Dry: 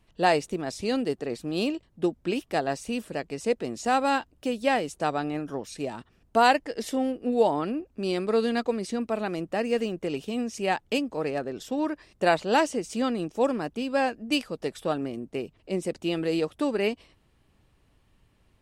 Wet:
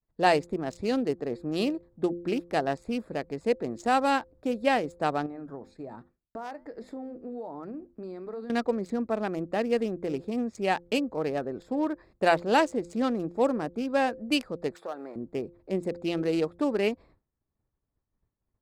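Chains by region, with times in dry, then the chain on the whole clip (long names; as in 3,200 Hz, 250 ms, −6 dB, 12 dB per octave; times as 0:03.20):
0:05.26–0:08.50: mains-hum notches 50/100/150/200/250 Hz + downward compressor 5 to 1, threshold −30 dBFS + flanger 1.2 Hz, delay 3.9 ms, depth 4.6 ms, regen −85%
0:14.75–0:15.16: mu-law and A-law mismatch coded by mu + high-pass filter 550 Hz + downward compressor 2 to 1, threshold −34 dBFS
whole clip: adaptive Wiener filter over 15 samples; hum removal 173 Hz, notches 3; downward expander −51 dBFS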